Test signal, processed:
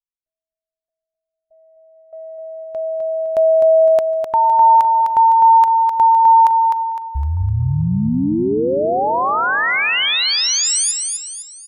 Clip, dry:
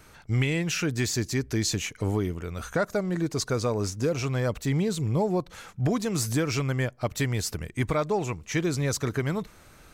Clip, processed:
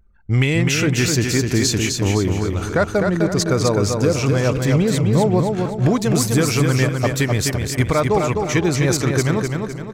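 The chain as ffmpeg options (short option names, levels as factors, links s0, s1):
-filter_complex "[0:a]asplit=2[s0][s1];[s1]adelay=450,lowpass=f=1500:p=1,volume=0.178,asplit=2[s2][s3];[s3]adelay=450,lowpass=f=1500:p=1,volume=0.44,asplit=2[s4][s5];[s5]adelay=450,lowpass=f=1500:p=1,volume=0.44,asplit=2[s6][s7];[s7]adelay=450,lowpass=f=1500:p=1,volume=0.44[s8];[s2][s4][s6][s8]amix=inputs=4:normalize=0[s9];[s0][s9]amix=inputs=2:normalize=0,anlmdn=0.398,asplit=2[s10][s11];[s11]aecho=0:1:255|510|765|1020|1275:0.596|0.25|0.105|0.0441|0.0185[s12];[s10][s12]amix=inputs=2:normalize=0,volume=2.51"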